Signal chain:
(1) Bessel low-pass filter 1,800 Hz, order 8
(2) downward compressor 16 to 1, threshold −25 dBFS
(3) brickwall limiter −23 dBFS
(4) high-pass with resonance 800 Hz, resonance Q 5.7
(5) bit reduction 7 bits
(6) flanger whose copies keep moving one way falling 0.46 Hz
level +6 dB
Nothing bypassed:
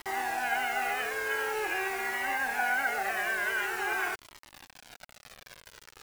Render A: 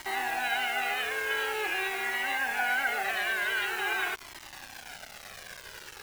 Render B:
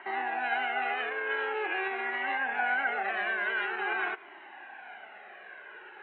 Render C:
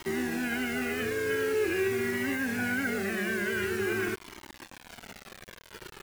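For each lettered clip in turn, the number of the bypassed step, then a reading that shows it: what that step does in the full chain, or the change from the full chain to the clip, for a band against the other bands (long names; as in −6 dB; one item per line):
1, 4 kHz band +7.0 dB
5, distortion level −13 dB
4, 250 Hz band +16.0 dB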